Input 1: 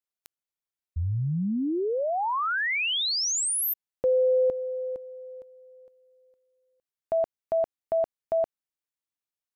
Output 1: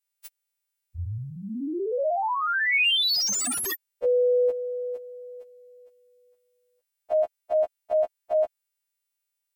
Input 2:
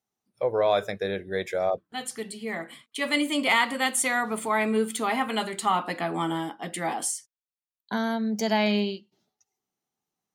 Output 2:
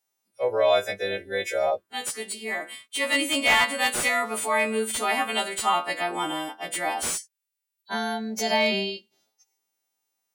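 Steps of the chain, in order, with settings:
every partial snapped to a pitch grid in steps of 2 semitones
graphic EQ with 15 bands 160 Hz −11 dB, 630 Hz +4 dB, 2,500 Hz +4 dB
slew-rate limiting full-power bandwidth 390 Hz
level −1 dB

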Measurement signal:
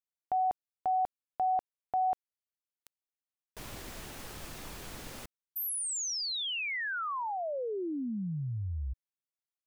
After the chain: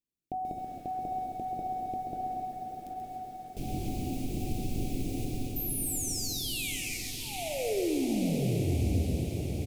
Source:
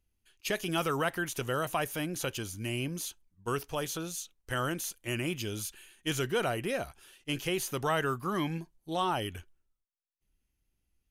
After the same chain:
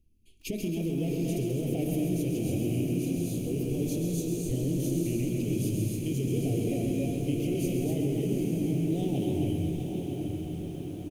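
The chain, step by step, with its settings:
low shelf with overshoot 450 Hz +13 dB, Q 1.5
mains-hum notches 50/100/150/200/250 Hz
double-tracking delay 23 ms −14 dB
reverb whose tail is shaped and stops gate 310 ms rising, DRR 1.5 dB
floating-point word with a short mantissa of 6 bits
elliptic band-stop filter 730–2,300 Hz, stop band 40 dB
dynamic equaliser 3,600 Hz, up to −4 dB, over −48 dBFS, Q 0.82
brickwall limiter −19.5 dBFS
downward compressor 2.5 to 1, threshold −29 dBFS
feedback delay with all-pass diffusion 777 ms, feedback 62%, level −5 dB
feedback echo at a low word length 133 ms, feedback 55%, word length 9 bits, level −7 dB
level −1 dB

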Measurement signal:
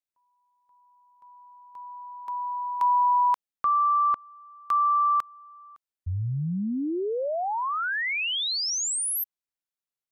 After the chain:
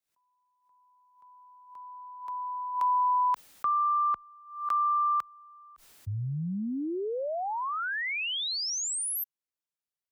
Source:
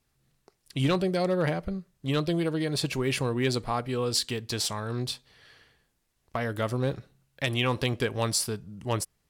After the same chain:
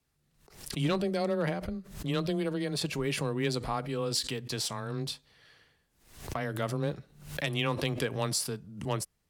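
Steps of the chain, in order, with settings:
frequency shifter +13 Hz
background raised ahead of every attack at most 97 dB per second
level −4 dB

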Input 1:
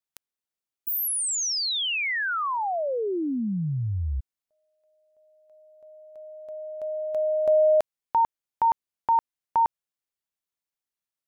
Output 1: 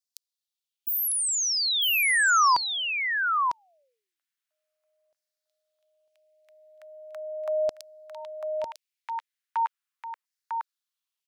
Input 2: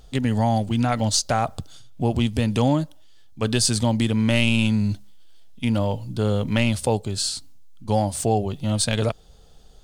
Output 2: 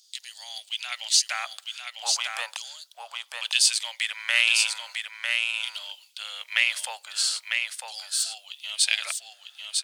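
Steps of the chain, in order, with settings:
Butterworth high-pass 550 Hz 48 dB per octave
auto-filter high-pass saw down 0.39 Hz 990–5,100 Hz
on a send: single-tap delay 950 ms −4.5 dB

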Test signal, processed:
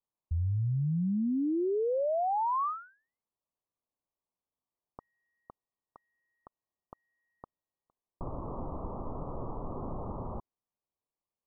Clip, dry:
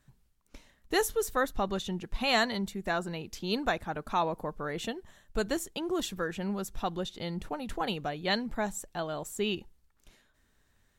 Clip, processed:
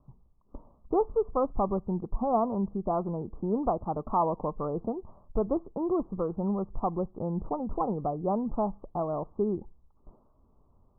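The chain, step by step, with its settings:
Butterworth low-pass 1,200 Hz 96 dB per octave
in parallel at 0 dB: downward compressor, threshold −40 dBFS
on the sum: level +1.5 dB

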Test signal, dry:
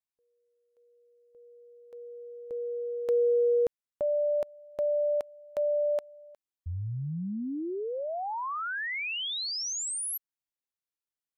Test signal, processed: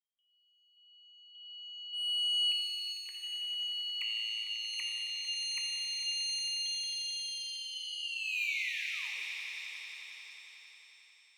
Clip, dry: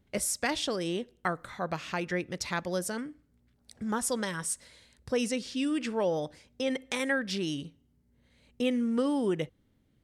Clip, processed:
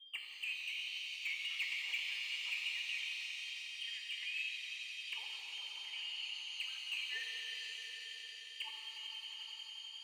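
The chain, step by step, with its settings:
treble cut that deepens with the level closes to 400 Hz, closed at −28.5 dBFS
notch filter 370 Hz, Q 12
in parallel at 0 dB: downward compressor 12 to 1, threshold −39 dBFS
on the sum: envelope filter 200–2,500 Hz, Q 11, up, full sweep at −25.5 dBFS
voice inversion scrambler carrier 3,400 Hz
mid-hump overdrive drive 27 dB, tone 2,100 Hz, clips at −28 dBFS
phaser with its sweep stopped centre 980 Hz, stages 8
echo that builds up and dies away 90 ms, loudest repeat 5, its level −13.5 dB
reverb with rising layers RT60 3 s, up +7 semitones, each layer −8 dB, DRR 0 dB

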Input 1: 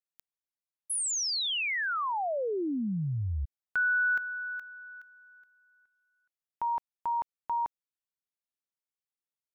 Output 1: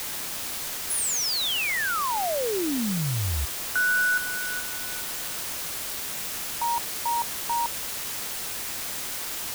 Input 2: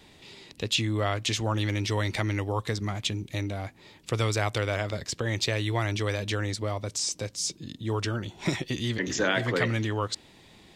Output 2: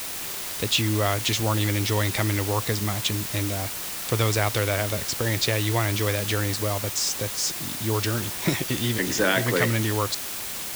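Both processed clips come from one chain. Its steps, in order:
bit-depth reduction 6 bits, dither triangular
level +3.5 dB

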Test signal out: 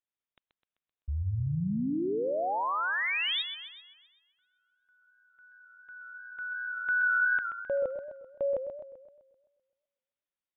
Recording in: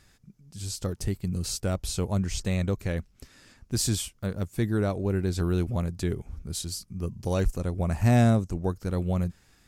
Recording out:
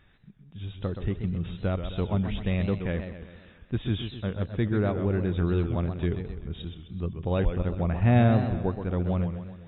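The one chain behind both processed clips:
linear-phase brick-wall low-pass 3,800 Hz
feedback echo with a swinging delay time 129 ms, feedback 52%, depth 142 cents, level −8.5 dB

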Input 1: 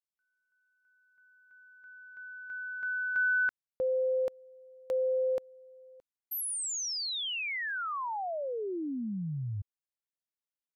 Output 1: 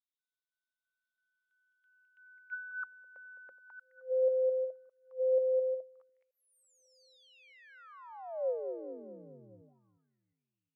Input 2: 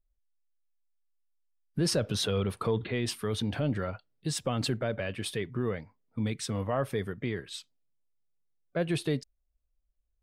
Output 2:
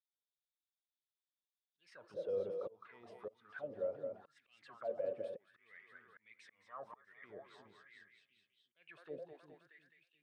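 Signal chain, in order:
in parallel at −2 dB: brickwall limiter −27.5 dBFS
on the sum: echo with a time of its own for lows and highs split 320 Hz, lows 356 ms, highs 211 ms, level −7 dB
volume swells 690 ms
envelope filter 530–3,700 Hz, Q 8.8, down, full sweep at −28 dBFS

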